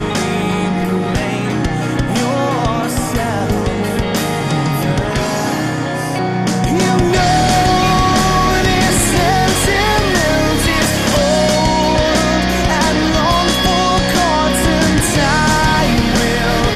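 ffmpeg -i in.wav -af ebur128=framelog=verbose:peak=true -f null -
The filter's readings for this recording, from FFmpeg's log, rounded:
Integrated loudness:
  I:         -14.0 LUFS
  Threshold: -24.0 LUFS
Loudness range:
  LRA:         4.4 LU
  Threshold: -33.9 LUFS
  LRA low:   -16.9 LUFS
  LRA high:  -12.4 LUFS
True peak:
  Peak:       -2.6 dBFS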